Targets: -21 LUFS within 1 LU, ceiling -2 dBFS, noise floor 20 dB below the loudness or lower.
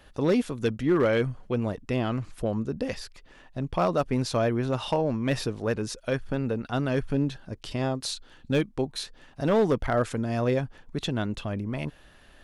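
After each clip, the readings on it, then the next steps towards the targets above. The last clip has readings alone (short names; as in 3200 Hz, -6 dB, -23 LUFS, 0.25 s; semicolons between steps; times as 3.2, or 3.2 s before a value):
clipped 0.4%; flat tops at -16.0 dBFS; loudness -28.0 LUFS; peak -16.0 dBFS; loudness target -21.0 LUFS
-> clip repair -16 dBFS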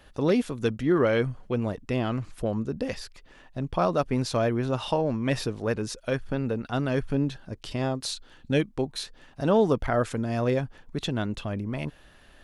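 clipped 0.0%; loudness -28.0 LUFS; peak -10.0 dBFS; loudness target -21.0 LUFS
-> gain +7 dB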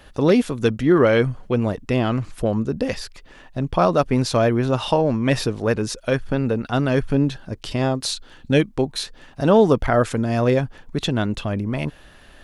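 loudness -21.0 LUFS; peak -3.0 dBFS; noise floor -48 dBFS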